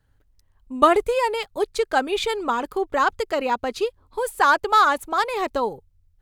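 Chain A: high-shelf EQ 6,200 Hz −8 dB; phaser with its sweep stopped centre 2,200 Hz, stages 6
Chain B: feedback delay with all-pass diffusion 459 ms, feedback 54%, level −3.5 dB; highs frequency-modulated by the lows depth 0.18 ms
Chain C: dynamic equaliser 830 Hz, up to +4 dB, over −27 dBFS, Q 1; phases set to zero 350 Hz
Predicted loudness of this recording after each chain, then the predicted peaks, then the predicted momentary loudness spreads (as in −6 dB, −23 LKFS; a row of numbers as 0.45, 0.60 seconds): −24.5, −20.0, −23.0 LKFS; −5.0, −2.0, −2.0 dBFS; 15, 7, 11 LU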